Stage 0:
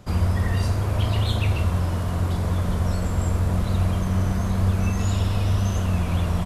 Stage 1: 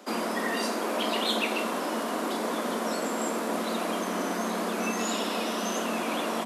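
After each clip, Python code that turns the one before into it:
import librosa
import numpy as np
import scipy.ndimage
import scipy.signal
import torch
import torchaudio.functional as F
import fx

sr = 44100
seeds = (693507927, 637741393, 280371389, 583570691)

y = scipy.signal.sosfilt(scipy.signal.butter(12, 220.0, 'highpass', fs=sr, output='sos'), x)
y = F.gain(torch.from_numpy(y), 3.5).numpy()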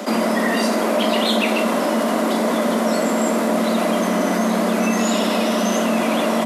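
y = fx.small_body(x, sr, hz=(210.0, 600.0, 2000.0), ring_ms=35, db=8)
y = fx.env_flatten(y, sr, amount_pct=50)
y = F.gain(torch.from_numpy(y), 5.5).numpy()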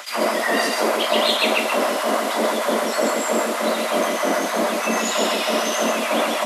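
y = fx.filter_lfo_highpass(x, sr, shape='sine', hz=3.2, low_hz=310.0, high_hz=2900.0, q=1.1)
y = y + 10.0 ** (-3.5 / 20.0) * np.pad(y, (int(134 * sr / 1000.0), 0))[:len(y)]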